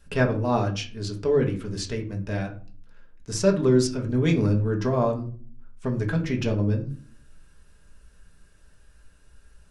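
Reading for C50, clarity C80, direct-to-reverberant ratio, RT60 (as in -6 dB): 11.5 dB, 17.0 dB, 1.0 dB, 0.40 s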